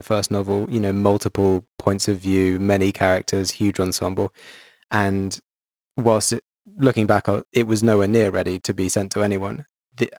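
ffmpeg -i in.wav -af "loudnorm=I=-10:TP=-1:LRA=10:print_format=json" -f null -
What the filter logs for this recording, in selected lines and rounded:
"input_i" : "-19.8",
"input_tp" : "-1.3",
"input_lra" : "3.2",
"input_thresh" : "-30.2",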